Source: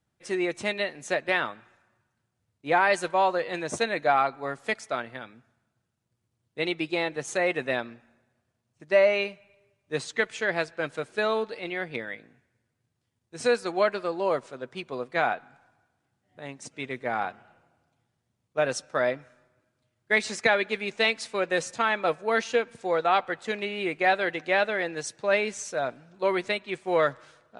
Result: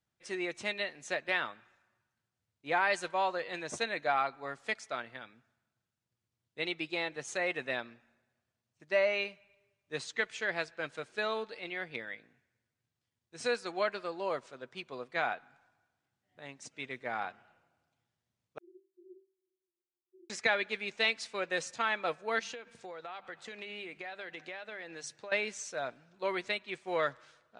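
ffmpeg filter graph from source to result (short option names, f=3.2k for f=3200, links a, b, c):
-filter_complex "[0:a]asettb=1/sr,asplit=3[a][b][c];[a]atrim=end=18.584[d];[b]atrim=start=18.58:end=20.3,asetpts=PTS-STARTPTS,afade=t=in:d=0.004:c=qsin,afade=t=out:st=1.716:d=0.004:c=qsin,aeval=exprs='(mod(10*val(0)+1,2)-1)/10':c=same,asuperpass=centerf=360:order=20:qfactor=7.3[e];[c]atrim=start=20.296[f];[d][e]acrossfade=d=0.004:c1=hsin:c2=qsin[g];[g][f]acrossfade=d=0.004:c1=qsin:c2=hsin,asettb=1/sr,asplit=3[h][i][j];[h]atrim=end=22.394[k];[i]atrim=start=22.39:end=25.32,asetpts=PTS-STARTPTS,afade=t=in:d=0.004:c=qsin,afade=t=out:st=2.926:d=0.004:c=qsin,bandreject=f=50:t=h:w=6,bandreject=f=100:t=h:w=6,bandreject=f=150:t=h:w=6,bandreject=f=200:t=h:w=6,acompressor=threshold=-32dB:ratio=10:attack=3.2:release=140:knee=1:detection=peak[l];[j]atrim=start=25.316[m];[k][l]acrossfade=d=0.004:c1=hsin:c2=qsin[n];[n][m]acrossfade=d=0.004:c1=qsin:c2=hsin,lowpass=7.7k,tiltshelf=f=1.1k:g=-3.5,volume=-7dB"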